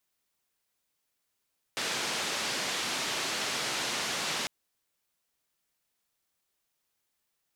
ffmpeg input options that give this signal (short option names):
-f lavfi -i "anoisesrc=c=white:d=2.7:r=44100:seed=1,highpass=f=160,lowpass=f=5300,volume=-21.7dB"